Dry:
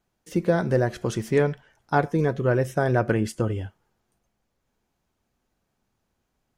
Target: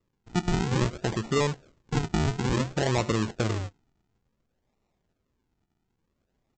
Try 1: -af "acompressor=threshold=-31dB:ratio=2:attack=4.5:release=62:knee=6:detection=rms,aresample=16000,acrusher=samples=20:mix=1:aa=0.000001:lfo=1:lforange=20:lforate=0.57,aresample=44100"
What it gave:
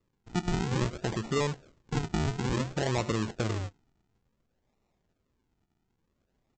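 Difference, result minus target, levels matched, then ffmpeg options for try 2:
compressor: peak gain reduction +4 dB
-af "acompressor=threshold=-23.5dB:ratio=2:attack=4.5:release=62:knee=6:detection=rms,aresample=16000,acrusher=samples=20:mix=1:aa=0.000001:lfo=1:lforange=20:lforate=0.57,aresample=44100"

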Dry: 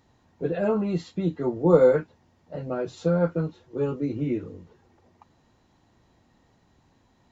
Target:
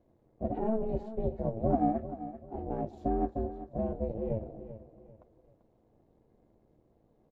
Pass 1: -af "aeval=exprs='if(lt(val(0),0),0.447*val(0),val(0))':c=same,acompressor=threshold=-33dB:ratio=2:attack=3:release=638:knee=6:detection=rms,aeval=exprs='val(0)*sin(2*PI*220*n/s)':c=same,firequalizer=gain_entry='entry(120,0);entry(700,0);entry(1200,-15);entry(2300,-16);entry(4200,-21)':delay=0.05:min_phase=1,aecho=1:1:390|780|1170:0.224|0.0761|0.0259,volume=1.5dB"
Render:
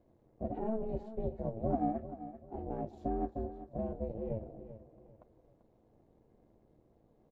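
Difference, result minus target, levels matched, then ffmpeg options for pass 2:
compressor: peak gain reduction +5 dB
-af "aeval=exprs='if(lt(val(0),0),0.447*val(0),val(0))':c=same,acompressor=threshold=-23dB:ratio=2:attack=3:release=638:knee=6:detection=rms,aeval=exprs='val(0)*sin(2*PI*220*n/s)':c=same,firequalizer=gain_entry='entry(120,0);entry(700,0);entry(1200,-15);entry(2300,-16);entry(4200,-21)':delay=0.05:min_phase=1,aecho=1:1:390|780|1170:0.224|0.0761|0.0259,volume=1.5dB"

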